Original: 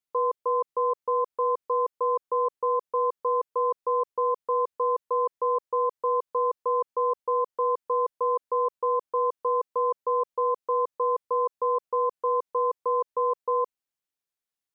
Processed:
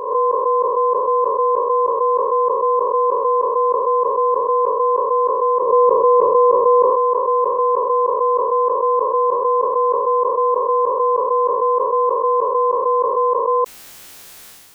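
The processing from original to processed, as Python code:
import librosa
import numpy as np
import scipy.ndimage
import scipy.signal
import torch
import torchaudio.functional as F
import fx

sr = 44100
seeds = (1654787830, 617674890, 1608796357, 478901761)

y = fx.spec_swells(x, sr, rise_s=0.82)
y = fx.low_shelf(y, sr, hz=480.0, db=11.0, at=(5.62, 6.9))
y = fx.sustainer(y, sr, db_per_s=29.0)
y = y * librosa.db_to_amplitude(8.0)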